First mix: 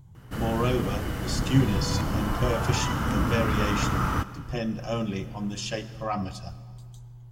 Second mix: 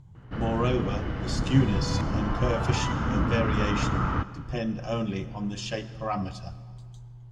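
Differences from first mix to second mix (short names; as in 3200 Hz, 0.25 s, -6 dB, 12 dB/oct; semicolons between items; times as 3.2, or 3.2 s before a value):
first sound: add air absorption 230 m; master: add air absorption 58 m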